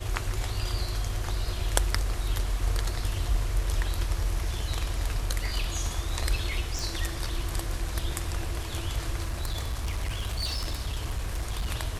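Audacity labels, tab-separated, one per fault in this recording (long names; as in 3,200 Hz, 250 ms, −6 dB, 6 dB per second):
6.790000	6.790000	click
9.200000	11.670000	clipping −25.5 dBFS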